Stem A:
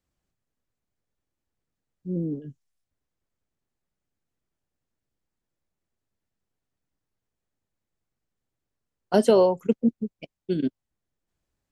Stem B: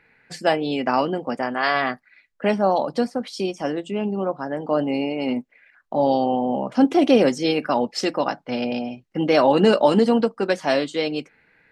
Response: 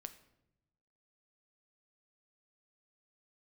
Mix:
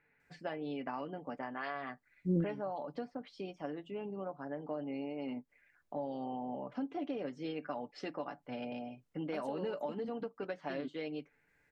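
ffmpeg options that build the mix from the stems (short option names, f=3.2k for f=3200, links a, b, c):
-filter_complex "[0:a]acompressor=threshold=-26dB:ratio=4,adelay=200,volume=0dB[a];[1:a]lowpass=2.8k,aecho=1:1:6.9:0.47,acompressor=threshold=-21dB:ratio=5,volume=-15dB,asplit=2[b][c];[c]apad=whole_len=525595[d];[a][d]sidechaincompress=threshold=-55dB:ratio=8:attack=5.2:release=112[e];[e][b]amix=inputs=2:normalize=0"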